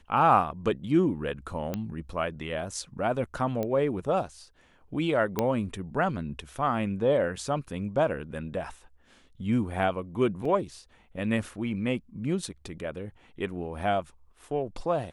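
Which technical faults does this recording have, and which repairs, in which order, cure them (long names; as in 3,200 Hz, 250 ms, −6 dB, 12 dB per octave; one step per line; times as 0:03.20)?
0:01.74: click −17 dBFS
0:03.63: click −18 dBFS
0:05.39: click −12 dBFS
0:10.45: drop-out 3.8 ms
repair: click removal
repair the gap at 0:10.45, 3.8 ms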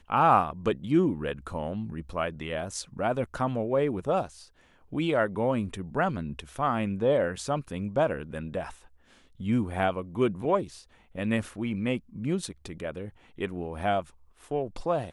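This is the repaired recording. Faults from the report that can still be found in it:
0:03.63: click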